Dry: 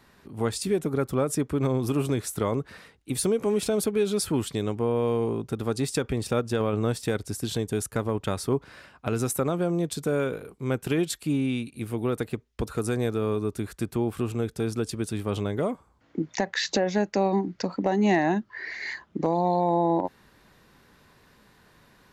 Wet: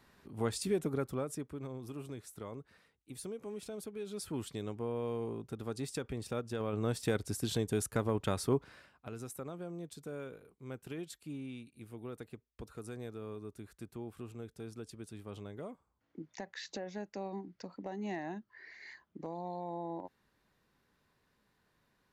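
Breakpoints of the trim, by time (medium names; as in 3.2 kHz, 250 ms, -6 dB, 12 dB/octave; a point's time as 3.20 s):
0.87 s -7 dB
1.66 s -18.5 dB
3.98 s -18.5 dB
4.41 s -12 dB
6.55 s -12 dB
7.07 s -5 dB
8.57 s -5 dB
9.11 s -17.5 dB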